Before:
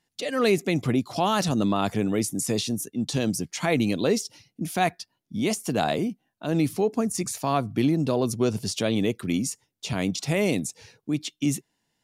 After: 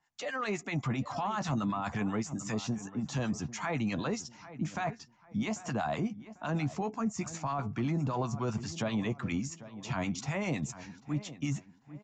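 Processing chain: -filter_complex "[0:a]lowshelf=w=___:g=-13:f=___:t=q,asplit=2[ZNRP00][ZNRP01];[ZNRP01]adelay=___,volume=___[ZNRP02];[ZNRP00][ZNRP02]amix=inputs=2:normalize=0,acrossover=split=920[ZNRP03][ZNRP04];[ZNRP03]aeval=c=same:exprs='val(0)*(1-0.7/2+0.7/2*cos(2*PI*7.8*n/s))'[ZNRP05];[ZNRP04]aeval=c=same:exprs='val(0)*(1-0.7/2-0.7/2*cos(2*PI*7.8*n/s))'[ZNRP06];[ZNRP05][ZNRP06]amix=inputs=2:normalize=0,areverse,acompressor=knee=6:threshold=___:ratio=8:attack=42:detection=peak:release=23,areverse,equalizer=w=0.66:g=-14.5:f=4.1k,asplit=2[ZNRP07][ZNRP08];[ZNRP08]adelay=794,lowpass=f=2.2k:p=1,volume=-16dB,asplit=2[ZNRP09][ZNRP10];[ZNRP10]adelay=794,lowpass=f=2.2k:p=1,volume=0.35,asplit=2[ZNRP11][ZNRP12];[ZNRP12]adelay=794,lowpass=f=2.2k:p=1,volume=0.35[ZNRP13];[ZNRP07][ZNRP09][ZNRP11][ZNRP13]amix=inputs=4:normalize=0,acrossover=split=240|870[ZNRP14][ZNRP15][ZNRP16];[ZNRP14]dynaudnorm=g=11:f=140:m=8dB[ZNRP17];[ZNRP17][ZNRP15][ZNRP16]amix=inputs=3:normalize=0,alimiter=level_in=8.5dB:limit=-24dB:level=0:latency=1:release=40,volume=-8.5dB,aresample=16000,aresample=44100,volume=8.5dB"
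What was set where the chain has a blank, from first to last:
1.5, 660, 14, -10dB, -43dB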